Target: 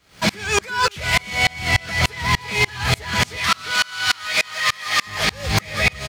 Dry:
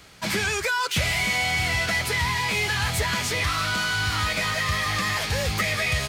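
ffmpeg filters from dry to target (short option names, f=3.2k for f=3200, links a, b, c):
-filter_complex "[0:a]asettb=1/sr,asplit=3[a][b][c];[a]atrim=end=3.364[d];[b]atrim=start=3.36:end=5.07,asetpts=PTS-STARTPTS,afade=t=in:d=0.004:c=qsin,afade=t=out:st=1.706:d=0.004:c=qsin,highpass=f=1.4k:p=1[e];[c]atrim=start=5.066[f];[d][e]acrossfade=d=0.004:c1=hsin:c2=qsin[g];[g][f]acrossfade=d=0.004:c1=qsin:c2=hsin,acrossover=split=7500[h][i];[h]acontrast=28[j];[j][i]amix=inputs=2:normalize=0,alimiter=limit=-17dB:level=0:latency=1:release=45,asplit=2[k][l];[l]acrusher=bits=6:mix=0:aa=0.000001,volume=-7dB[m];[k][m]amix=inputs=2:normalize=0,asplit=2[n][o];[o]adelay=349.9,volume=-8dB,highshelf=f=4k:g=-7.87[p];[n][p]amix=inputs=2:normalize=0,aeval=exprs='val(0)*pow(10,-31*if(lt(mod(-3.4*n/s,1),2*abs(-3.4)/1000),1-mod(-3.4*n/s,1)/(2*abs(-3.4)/1000),(mod(-3.4*n/s,1)-2*abs(-3.4)/1000)/(1-2*abs(-3.4)/1000))/20)':c=same,volume=9dB"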